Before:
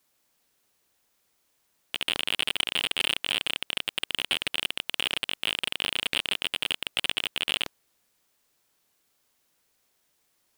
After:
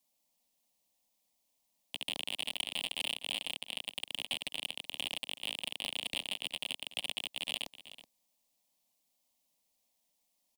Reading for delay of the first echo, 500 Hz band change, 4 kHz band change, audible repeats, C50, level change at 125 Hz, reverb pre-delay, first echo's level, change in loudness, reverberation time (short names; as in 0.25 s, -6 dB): 0.375 s, -9.5 dB, -9.0 dB, 1, none, -11.5 dB, none, -15.0 dB, -9.5 dB, none